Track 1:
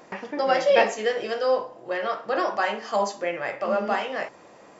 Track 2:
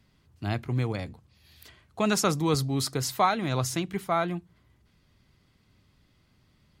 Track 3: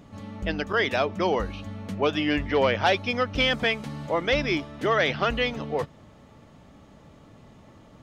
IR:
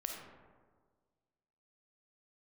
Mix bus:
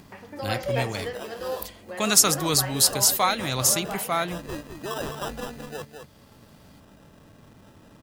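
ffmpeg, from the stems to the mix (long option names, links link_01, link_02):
-filter_complex "[0:a]volume=-9.5dB,asplit=2[link_01][link_02];[1:a]crystalizer=i=6:c=0,volume=-2.5dB[link_03];[2:a]acrusher=samples=20:mix=1:aa=0.000001,acompressor=mode=upward:threshold=-34dB:ratio=2.5,volume=-9dB,asplit=2[link_04][link_05];[link_05]volume=-7dB[link_06];[link_02]apad=whole_len=353792[link_07];[link_04][link_07]sidechaincompress=threshold=-45dB:ratio=8:attack=16:release=390[link_08];[link_06]aecho=0:1:210:1[link_09];[link_01][link_03][link_08][link_09]amix=inputs=4:normalize=0"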